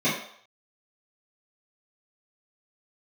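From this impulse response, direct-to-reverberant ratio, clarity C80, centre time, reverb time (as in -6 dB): -12.5 dB, 7.5 dB, 43 ms, 0.65 s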